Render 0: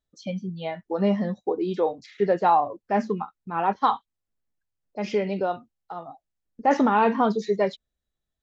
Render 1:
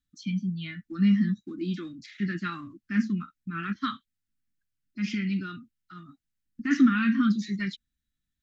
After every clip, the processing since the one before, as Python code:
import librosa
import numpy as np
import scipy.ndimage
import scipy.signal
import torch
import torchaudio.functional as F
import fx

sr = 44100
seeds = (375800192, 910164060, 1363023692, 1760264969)

y = scipy.signal.sosfilt(scipy.signal.cheby2(4, 40, [420.0, 960.0], 'bandstop', fs=sr, output='sos'), x)
y = fx.peak_eq(y, sr, hz=450.0, db=5.0, octaves=2.8)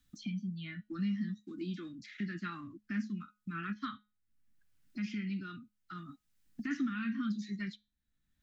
y = fx.comb_fb(x, sr, f0_hz=210.0, decay_s=0.27, harmonics='all', damping=0.0, mix_pct=40)
y = fx.band_squash(y, sr, depth_pct=70)
y = y * 10.0 ** (-6.0 / 20.0)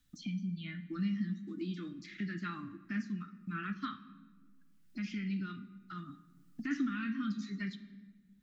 y = fx.room_shoebox(x, sr, seeds[0], volume_m3=1400.0, walls='mixed', distance_m=0.47)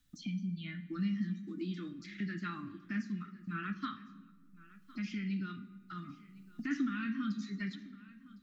y = x + 10.0 ** (-20.0 / 20.0) * np.pad(x, (int(1058 * sr / 1000.0), 0))[:len(x)]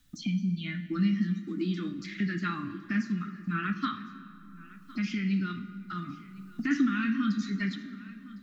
y = fx.rev_plate(x, sr, seeds[1], rt60_s=3.1, hf_ratio=0.55, predelay_ms=0, drr_db=13.0)
y = y * 10.0 ** (8.0 / 20.0)